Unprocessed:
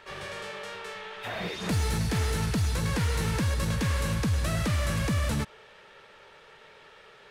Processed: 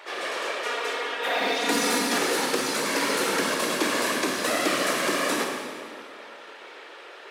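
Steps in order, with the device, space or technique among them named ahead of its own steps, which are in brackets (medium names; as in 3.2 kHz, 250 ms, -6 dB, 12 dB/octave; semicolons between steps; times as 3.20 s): whispering ghost (whisper effect; high-pass 320 Hz 24 dB/octave; reverberation RT60 2.2 s, pre-delay 18 ms, DRR 1 dB); 0.64–2.18 s: comb 4.2 ms, depth 67%; trim +6.5 dB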